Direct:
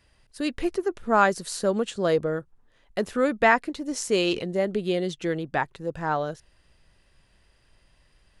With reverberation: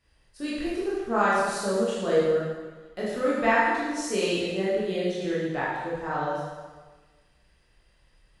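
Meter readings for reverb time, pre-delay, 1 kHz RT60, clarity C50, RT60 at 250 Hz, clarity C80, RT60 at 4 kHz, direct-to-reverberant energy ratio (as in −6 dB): 1.4 s, 17 ms, 1.4 s, −2.0 dB, 1.4 s, 1.0 dB, 1.3 s, −8.5 dB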